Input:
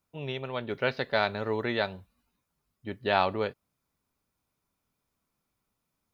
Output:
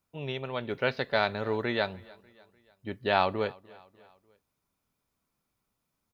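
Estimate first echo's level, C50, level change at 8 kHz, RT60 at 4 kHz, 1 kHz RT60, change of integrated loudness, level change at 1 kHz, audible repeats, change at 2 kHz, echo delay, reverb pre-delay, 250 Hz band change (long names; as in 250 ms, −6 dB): −24.0 dB, no reverb audible, can't be measured, no reverb audible, no reverb audible, 0.0 dB, 0.0 dB, 2, 0.0 dB, 297 ms, no reverb audible, 0.0 dB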